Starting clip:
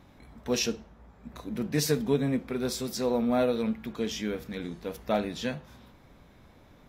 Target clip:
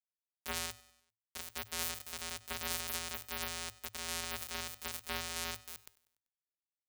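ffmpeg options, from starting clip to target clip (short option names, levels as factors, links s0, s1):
-filter_complex "[0:a]aemphasis=mode=production:type=50kf,bandreject=f=50:t=h:w=6,bandreject=f=100:t=h:w=6,bandreject=f=150:t=h:w=6,bandreject=f=200:t=h:w=6,bandreject=f=250:t=h:w=6,bandreject=f=300:t=h:w=6,adynamicequalizer=threshold=0.01:dfrequency=530:dqfactor=0.92:tfrequency=530:tqfactor=0.92:attack=5:release=100:ratio=0.375:range=2.5:mode=boostabove:tftype=bell,acrossover=split=1400[s0][s1];[s0]acompressor=threshold=0.0112:ratio=5[s2];[s2][s1]amix=inputs=2:normalize=0,alimiter=limit=0.1:level=0:latency=1:release=473,asoftclip=type=tanh:threshold=0.0133,afftfilt=real='hypot(re,im)*cos(PI*b)':imag='0':win_size=1024:overlap=0.75,aeval=exprs='max(val(0),0)':c=same,acrusher=bits=5:mix=0:aa=0.000001,afreqshift=-110,aecho=1:1:97|194|291|388:0.0944|0.0481|0.0246|0.0125,volume=2.37"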